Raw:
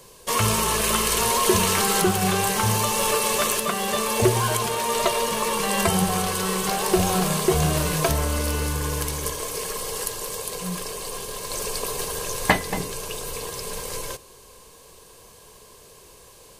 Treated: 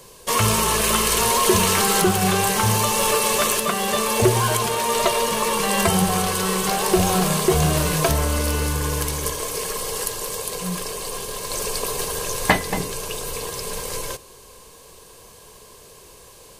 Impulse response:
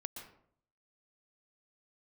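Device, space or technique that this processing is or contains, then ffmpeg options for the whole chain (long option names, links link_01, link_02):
parallel distortion: -filter_complex "[0:a]asplit=2[link_01][link_02];[link_02]asoftclip=type=hard:threshold=-16.5dB,volume=-8.5dB[link_03];[link_01][link_03]amix=inputs=2:normalize=0"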